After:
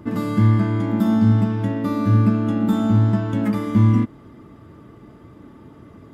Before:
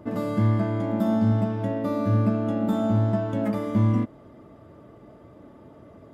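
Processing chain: bell 610 Hz -12.5 dB 0.7 oct; gain +6.5 dB

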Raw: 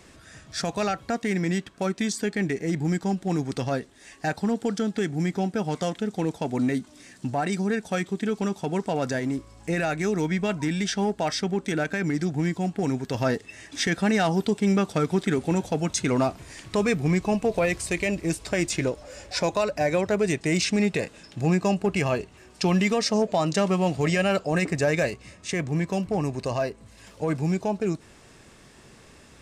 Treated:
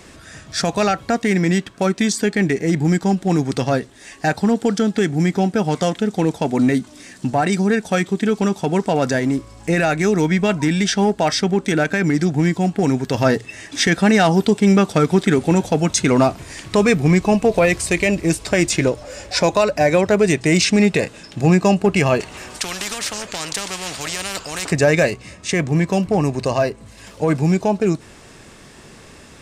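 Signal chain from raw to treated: notches 60/120 Hz; 22.2–24.72 spectral compressor 4:1; gain +8.5 dB

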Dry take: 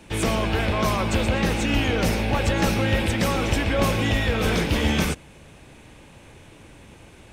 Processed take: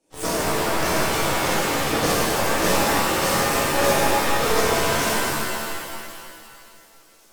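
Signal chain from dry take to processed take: HPF 350 Hz 12 dB/oct; band shelf 1800 Hz -12.5 dB 2.5 oct; added harmonics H 3 -22 dB, 4 -17 dB, 7 -18 dB, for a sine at -14 dBFS; thin delay 1.099 s, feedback 53%, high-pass 2900 Hz, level -24 dB; shimmer reverb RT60 2.2 s, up +7 st, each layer -2 dB, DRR -10 dB

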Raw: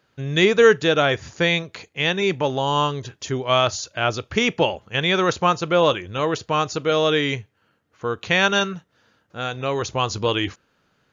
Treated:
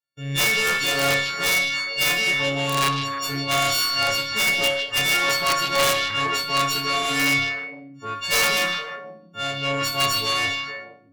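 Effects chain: frequency quantiser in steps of 4 st; expander -42 dBFS; high shelf 3300 Hz +8 dB; added harmonics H 5 -12 dB, 6 -14 dB, 8 -31 dB, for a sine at -2 dBFS; resonator bank G#2 sus4, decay 0.45 s; wrapped overs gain 15.5 dB; added harmonics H 4 -16 dB, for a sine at -15.5 dBFS; delay with a stepping band-pass 0.153 s, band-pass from 3700 Hz, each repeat -1.4 oct, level -3 dB; gain +3 dB

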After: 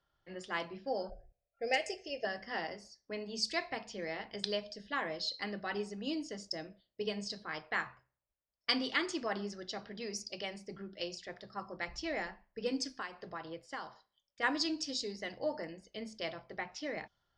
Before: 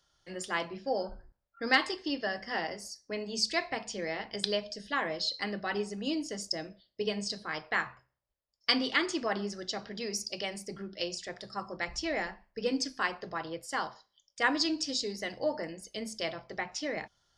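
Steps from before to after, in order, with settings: low-pass opened by the level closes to 2300 Hz, open at -26 dBFS; 1.1–2.25 EQ curve 140 Hz 0 dB, 300 Hz -13 dB, 420 Hz +4 dB, 730 Hz +9 dB, 1000 Hz -29 dB, 2500 Hz +6 dB, 3800 Hz -16 dB, 6100 Hz +9 dB, 9700 Hz +2 dB; 12.96–14.43 compressor 6:1, threshold -34 dBFS, peak gain reduction 9 dB; gain -4.5 dB

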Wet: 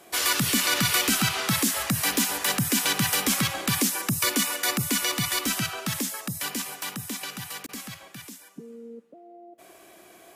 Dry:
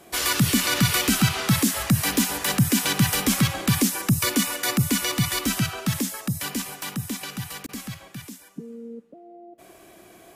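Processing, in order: low shelf 220 Hz -12 dB

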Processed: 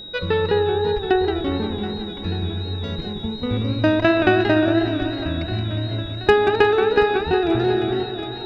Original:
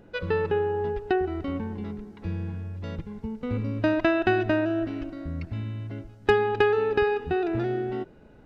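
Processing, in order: whine 3800 Hz -40 dBFS; swung echo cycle 1.212 s, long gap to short 1.5:1, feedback 48%, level -14.5 dB; warbling echo 0.178 s, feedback 52%, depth 169 cents, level -8.5 dB; gain +5.5 dB

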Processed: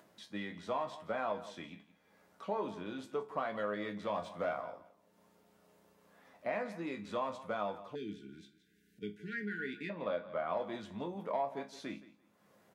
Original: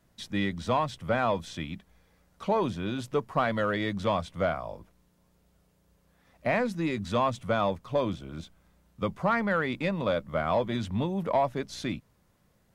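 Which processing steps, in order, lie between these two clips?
4.14–4.61 sample leveller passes 1; resonator bank C#2 major, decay 0.24 s; feedback echo 0.17 s, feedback 16%, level -17 dB; 7.95–9.9 spectral delete 470–1400 Hz; upward compressor, threshold -51 dBFS; 9.89–10.57 LPF 4300 Hz; compressor, threshold -33 dBFS, peak gain reduction 5.5 dB; Bessel high-pass 340 Hz, order 2; high shelf 2100 Hz -8.5 dB; gain +4.5 dB

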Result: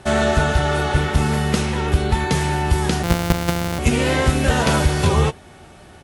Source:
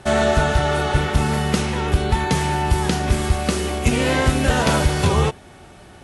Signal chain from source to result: 3.03–3.79 sample sorter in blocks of 256 samples; doubler 13 ms -13 dB

